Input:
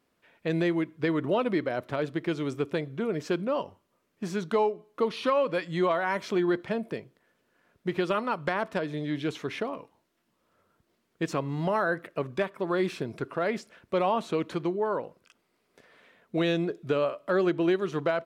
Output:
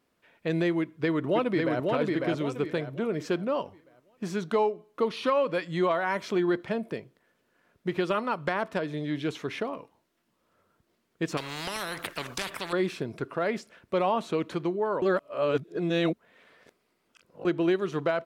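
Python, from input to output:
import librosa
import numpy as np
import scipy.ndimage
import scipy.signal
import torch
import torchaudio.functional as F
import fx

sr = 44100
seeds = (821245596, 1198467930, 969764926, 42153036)

y = fx.echo_throw(x, sr, start_s=0.8, length_s=1.04, ms=550, feedback_pct=35, wet_db=-2.5)
y = fx.spectral_comp(y, sr, ratio=4.0, at=(11.37, 12.73))
y = fx.edit(y, sr, fx.reverse_span(start_s=15.02, length_s=2.43), tone=tone)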